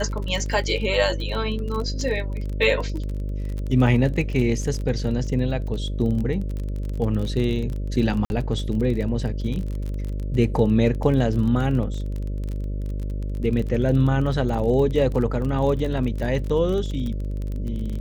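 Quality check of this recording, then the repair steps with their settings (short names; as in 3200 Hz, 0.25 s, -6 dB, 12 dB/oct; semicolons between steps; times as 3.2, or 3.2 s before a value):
buzz 50 Hz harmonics 12 -27 dBFS
crackle 31/s -28 dBFS
8.25–8.3 gap 51 ms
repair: de-click; de-hum 50 Hz, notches 12; interpolate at 8.25, 51 ms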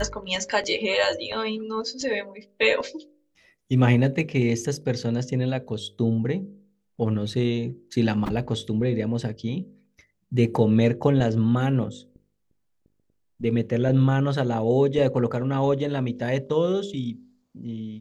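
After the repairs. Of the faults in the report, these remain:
none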